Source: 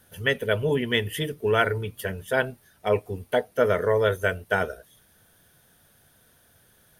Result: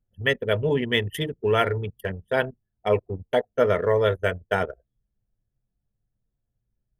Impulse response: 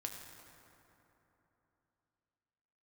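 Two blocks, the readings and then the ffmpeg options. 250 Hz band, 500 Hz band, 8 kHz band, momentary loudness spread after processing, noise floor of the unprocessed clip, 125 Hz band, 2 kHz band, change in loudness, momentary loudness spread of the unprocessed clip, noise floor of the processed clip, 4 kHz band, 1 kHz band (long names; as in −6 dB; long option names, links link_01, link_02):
+1.0 dB, +1.0 dB, can't be measured, 9 LU, −61 dBFS, +1.5 dB, −1.5 dB, +0.5 dB, 10 LU, −80 dBFS, +0.5 dB, +0.5 dB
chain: -filter_complex "[0:a]asplit=2[link_01][link_02];[1:a]atrim=start_sample=2205,atrim=end_sample=3969[link_03];[link_02][link_03]afir=irnorm=-1:irlink=0,volume=-13.5dB[link_04];[link_01][link_04]amix=inputs=2:normalize=0,anlmdn=39.8,bandreject=frequency=1500:width=13"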